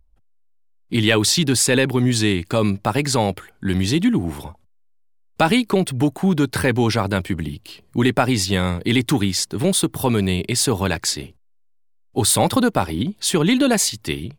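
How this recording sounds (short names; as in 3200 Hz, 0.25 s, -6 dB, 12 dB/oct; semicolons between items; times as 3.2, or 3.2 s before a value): noise floor -57 dBFS; spectral tilt -4.0 dB/oct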